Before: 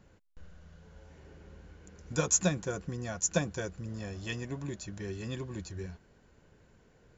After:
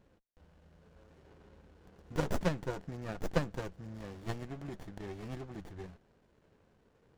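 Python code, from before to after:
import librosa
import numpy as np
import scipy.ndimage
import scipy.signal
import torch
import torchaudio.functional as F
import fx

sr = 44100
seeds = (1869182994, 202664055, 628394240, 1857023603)

y = scipy.signal.sosfilt(scipy.signal.butter(2, 5900.0, 'lowpass', fs=sr, output='sos'), x)
y = fx.low_shelf(y, sr, hz=290.0, db=-11.0)
y = fx.running_max(y, sr, window=33)
y = y * librosa.db_to_amplitude(1.5)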